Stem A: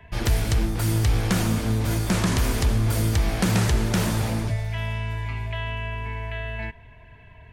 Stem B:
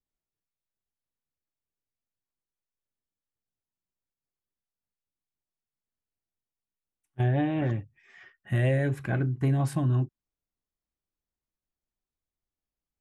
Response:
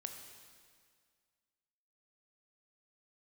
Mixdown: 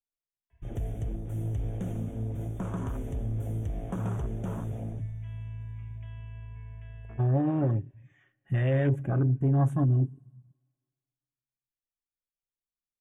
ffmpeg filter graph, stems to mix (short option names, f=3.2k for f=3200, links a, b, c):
-filter_complex "[0:a]adelay=500,volume=-11dB,asplit=2[a][b];[b]volume=-17dB[c];[1:a]alimiter=limit=-23dB:level=0:latency=1:release=11,volume=1.5dB,asplit=3[d][e][f];[e]volume=-11dB[g];[f]apad=whole_len=354007[h];[a][h]sidechaincompress=threshold=-43dB:ratio=8:attack=16:release=218[i];[2:a]atrim=start_sample=2205[j];[c][g]amix=inputs=2:normalize=0[k];[k][j]afir=irnorm=-1:irlink=0[l];[i][d][l]amix=inputs=3:normalize=0,afwtdn=0.0158,asuperstop=centerf=4600:order=12:qfactor=2.1,aecho=1:1:7.3:0.31"